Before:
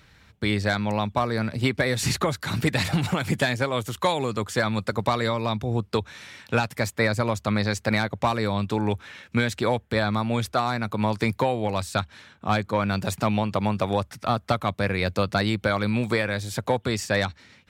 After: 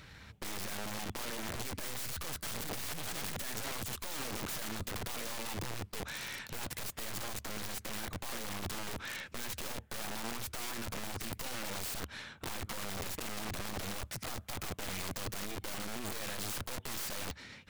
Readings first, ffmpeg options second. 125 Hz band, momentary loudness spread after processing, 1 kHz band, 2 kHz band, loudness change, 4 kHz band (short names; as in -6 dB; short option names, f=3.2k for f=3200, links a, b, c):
-19.5 dB, 3 LU, -17.5 dB, -14.5 dB, -14.0 dB, -9.5 dB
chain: -af "aeval=exprs='(tanh(56.2*val(0)+0.6)-tanh(0.6))/56.2':c=same,aeval=exprs='(mod(66.8*val(0)+1,2)-1)/66.8':c=same,volume=4.5dB"